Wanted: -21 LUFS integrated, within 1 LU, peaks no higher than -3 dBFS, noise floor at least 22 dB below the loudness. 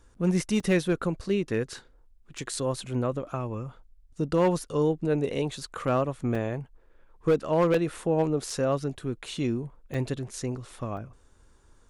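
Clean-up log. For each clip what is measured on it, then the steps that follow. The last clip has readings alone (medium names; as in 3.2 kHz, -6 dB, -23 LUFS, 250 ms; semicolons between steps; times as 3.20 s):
clipped samples 0.3%; clipping level -16.0 dBFS; dropouts 7; longest dropout 3.7 ms; loudness -28.5 LUFS; peak level -16.0 dBFS; loudness target -21.0 LUFS
-> clip repair -16 dBFS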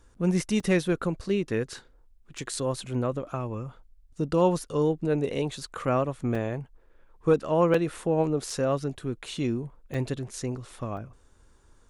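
clipped samples 0.0%; dropouts 7; longest dropout 3.7 ms
-> interpolate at 0.60/2.38/6.35/7.74/8.50/9.94/10.97 s, 3.7 ms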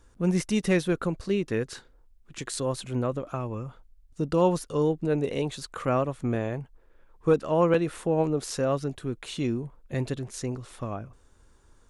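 dropouts 0; loudness -28.5 LUFS; peak level -9.5 dBFS; loudness target -21.0 LUFS
-> trim +7.5 dB; peak limiter -3 dBFS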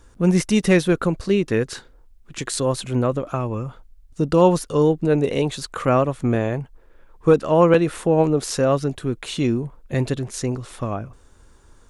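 loudness -21.0 LUFS; peak level -3.0 dBFS; noise floor -51 dBFS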